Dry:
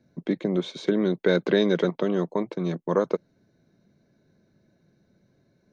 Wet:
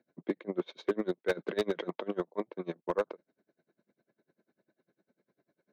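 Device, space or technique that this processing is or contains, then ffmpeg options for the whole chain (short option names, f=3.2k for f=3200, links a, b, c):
helicopter radio: -filter_complex "[0:a]highpass=320,lowpass=2.7k,aeval=exprs='val(0)*pow(10,-27*(0.5-0.5*cos(2*PI*10*n/s))/20)':c=same,asoftclip=type=hard:threshold=-21dB,asettb=1/sr,asplit=3[a][b][c];[a]atrim=end=0.784[d];[b]atrim=start=0.78:end=2.03,asetpts=PTS-STARTPTS,afade=t=in:d=0.004:c=qsin,afade=t=out:st=1.246:d=0.004:c=qsin,highshelf=f=6.1k:g=6[e];[c]atrim=start=2.026[f];[d][e]acrossfade=d=0.004:c1=hsin:c2=qsin[g];[g][f]acrossfade=d=0.004:c1=qsin:c2=hsin"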